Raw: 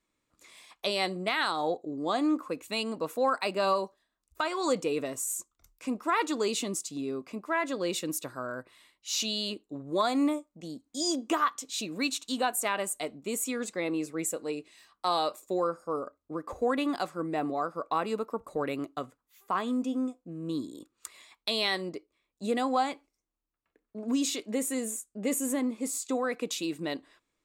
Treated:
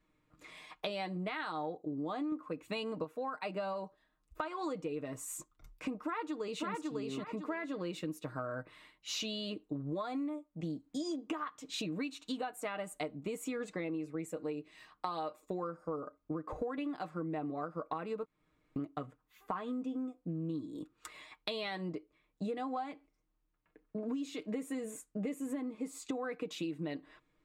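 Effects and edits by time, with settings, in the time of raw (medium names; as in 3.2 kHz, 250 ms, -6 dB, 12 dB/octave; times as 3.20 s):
2.32–3.04 s: gain +7 dB
6.04–6.68 s: echo throw 550 ms, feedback 15%, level -2 dB
18.25–18.76 s: room tone
whole clip: tone controls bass +6 dB, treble -14 dB; comb 6.5 ms, depth 54%; compression 12:1, threshold -38 dBFS; trim +3 dB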